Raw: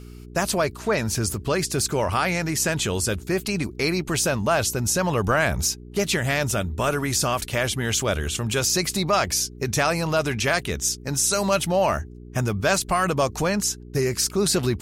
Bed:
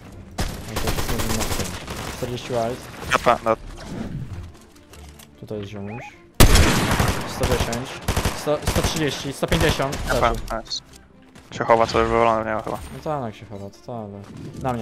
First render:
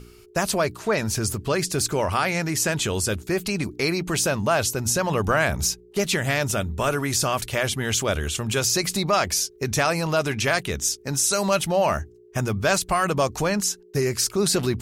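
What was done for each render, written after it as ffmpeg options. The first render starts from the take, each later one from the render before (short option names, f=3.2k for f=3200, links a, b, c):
-af "bandreject=f=60:t=h:w=4,bandreject=f=120:t=h:w=4,bandreject=f=180:t=h:w=4,bandreject=f=240:t=h:w=4,bandreject=f=300:t=h:w=4"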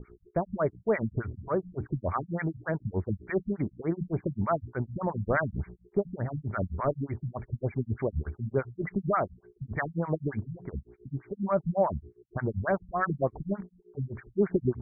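-filter_complex "[0:a]acrossover=split=870[a][b];[a]aeval=exprs='val(0)*(1-1/2+1/2*cos(2*PI*7.7*n/s))':c=same[c];[b]aeval=exprs='val(0)*(1-1/2-1/2*cos(2*PI*7.7*n/s))':c=same[d];[c][d]amix=inputs=2:normalize=0,afftfilt=real='re*lt(b*sr/1024,210*pow(2400/210,0.5+0.5*sin(2*PI*3.4*pts/sr)))':imag='im*lt(b*sr/1024,210*pow(2400/210,0.5+0.5*sin(2*PI*3.4*pts/sr)))':win_size=1024:overlap=0.75"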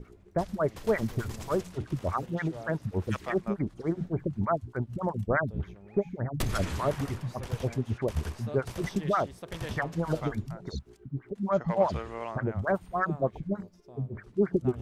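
-filter_complex "[1:a]volume=-20dB[a];[0:a][a]amix=inputs=2:normalize=0"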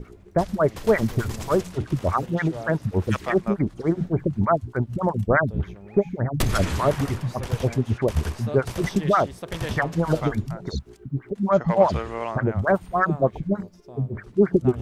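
-af "volume=7.5dB"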